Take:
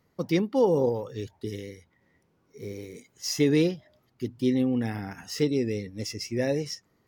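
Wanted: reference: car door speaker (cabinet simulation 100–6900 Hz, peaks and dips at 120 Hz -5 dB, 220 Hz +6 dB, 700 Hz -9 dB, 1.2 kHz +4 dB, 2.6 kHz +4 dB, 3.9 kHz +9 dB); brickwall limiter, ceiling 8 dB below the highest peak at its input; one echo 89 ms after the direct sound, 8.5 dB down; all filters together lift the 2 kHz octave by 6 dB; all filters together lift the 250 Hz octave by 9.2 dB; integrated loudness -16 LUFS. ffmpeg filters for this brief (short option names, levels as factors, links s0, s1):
-af "equalizer=f=250:t=o:g=8.5,equalizer=f=2000:t=o:g=4.5,alimiter=limit=0.178:level=0:latency=1,highpass=100,equalizer=f=120:t=q:w=4:g=-5,equalizer=f=220:t=q:w=4:g=6,equalizer=f=700:t=q:w=4:g=-9,equalizer=f=1200:t=q:w=4:g=4,equalizer=f=2600:t=q:w=4:g=4,equalizer=f=3900:t=q:w=4:g=9,lowpass=f=6900:w=0.5412,lowpass=f=6900:w=1.3066,aecho=1:1:89:0.376,volume=2.51"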